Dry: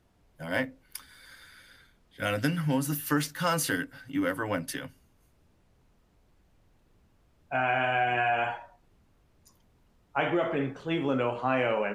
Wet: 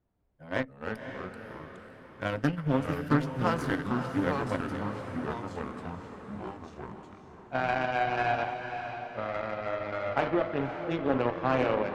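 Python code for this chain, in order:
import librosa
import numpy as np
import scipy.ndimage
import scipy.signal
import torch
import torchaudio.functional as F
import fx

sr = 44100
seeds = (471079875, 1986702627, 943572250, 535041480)

p1 = fx.vibrato(x, sr, rate_hz=2.1, depth_cents=6.4)
p2 = fx.cheby_harmonics(p1, sr, harmonics=(7,), levels_db=(-19,), full_scale_db=-12.5)
p3 = fx.echo_pitch(p2, sr, ms=203, semitones=-3, count=3, db_per_echo=-6.0)
p4 = fx.lowpass(p3, sr, hz=1100.0, slope=6)
p5 = p4 + fx.echo_diffused(p4, sr, ms=545, feedback_pct=46, wet_db=-8.0, dry=0)
p6 = fx.doppler_dist(p5, sr, depth_ms=0.25)
y = p6 * librosa.db_to_amplitude(3.0)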